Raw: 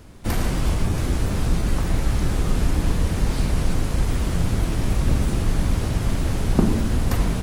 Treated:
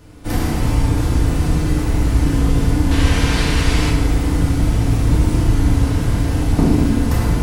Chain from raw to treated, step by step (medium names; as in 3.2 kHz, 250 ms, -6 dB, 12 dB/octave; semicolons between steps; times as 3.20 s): 2.91–3.90 s: peaking EQ 2.8 kHz +12 dB 2.8 oct; FDN reverb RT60 1.6 s, low-frequency decay 1.35×, high-frequency decay 0.6×, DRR -4.5 dB; trim -2 dB